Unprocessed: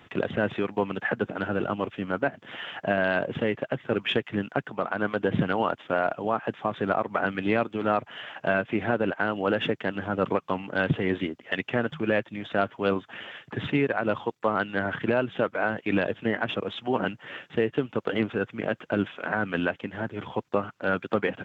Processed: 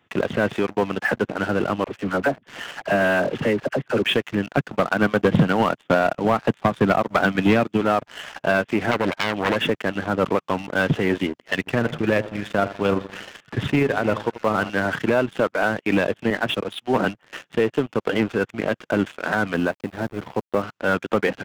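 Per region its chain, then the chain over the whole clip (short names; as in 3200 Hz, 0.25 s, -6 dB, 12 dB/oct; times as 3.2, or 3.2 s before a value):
1.84–4.04 LPF 3100 Hz + dispersion lows, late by 48 ms, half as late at 760 Hz
4.57–7.81 HPF 110 Hz 24 dB/oct + tone controls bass +6 dB, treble +6 dB + transient shaper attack +7 dB, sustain -3 dB
8.91–9.56 self-modulated delay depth 0.64 ms + LPF 3200 Hz
11.55–14.7 low shelf 98 Hz +11.5 dB + AM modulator 26 Hz, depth 20% + split-band echo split 1300 Hz, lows 83 ms, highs 0.3 s, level -14 dB
16.3–17.33 upward compressor, threshold -36 dBFS + three-band expander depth 100%
19.54–20.62 LPF 1200 Hz 6 dB/oct + sample gate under -43.5 dBFS
whole clip: HPF 60 Hz 6 dB/oct; sample leveller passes 3; gain -5 dB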